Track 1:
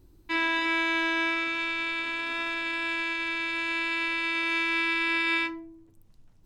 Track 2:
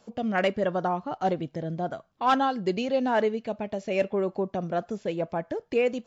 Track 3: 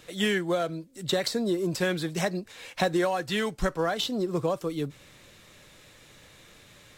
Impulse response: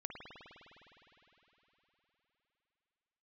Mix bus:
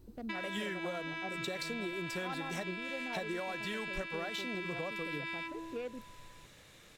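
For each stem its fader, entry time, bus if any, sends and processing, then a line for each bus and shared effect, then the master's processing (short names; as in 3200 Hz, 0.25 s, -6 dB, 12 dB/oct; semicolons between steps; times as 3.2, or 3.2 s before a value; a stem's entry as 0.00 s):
-2.0 dB, 0.00 s, send -10 dB, compressor, threshold -32 dBFS, peak gain reduction 9.5 dB
-11.5 dB, 0.00 s, no send, Wiener smoothing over 41 samples
-5.0 dB, 0.35 s, no send, dry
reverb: on, RT60 4.0 s, pre-delay 51 ms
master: compressor 3:1, threshold -38 dBFS, peak gain reduction 11 dB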